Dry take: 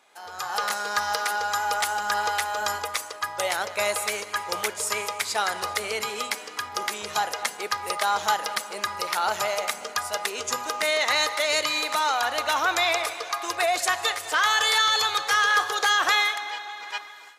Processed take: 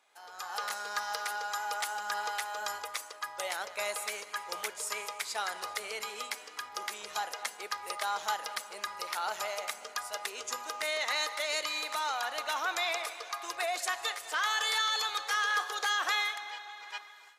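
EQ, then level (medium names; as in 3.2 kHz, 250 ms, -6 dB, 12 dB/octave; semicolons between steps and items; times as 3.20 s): high-pass 460 Hz 6 dB/octave; -8.5 dB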